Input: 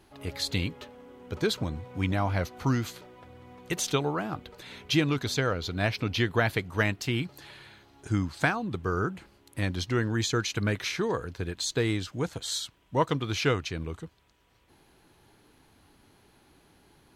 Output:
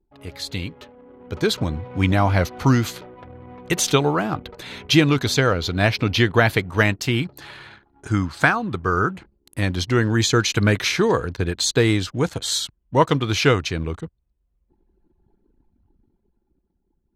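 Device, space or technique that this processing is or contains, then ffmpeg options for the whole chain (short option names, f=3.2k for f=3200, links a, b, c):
voice memo with heavy noise removal: -filter_complex "[0:a]asettb=1/sr,asplit=3[a][b][c];[a]atrim=end=7.414[d];[b]atrim=start=7.41:end=9.11,asetpts=PTS-STARTPTS,afade=t=in:d=0.004:c=qsin,afade=t=out:st=1.696:d=0.004:c=qsin,equalizer=f=1.3k:t=o:w=1:g=5.5[e];[c]atrim=start=9.106[f];[d][e]acrossfade=d=0.004:c1=hsin:c2=qsin[g];[g][f]acrossfade=d=0.004:c1=qsin:c2=hsin,anlmdn=0.00398,dynaudnorm=f=220:g=13:m=11dB"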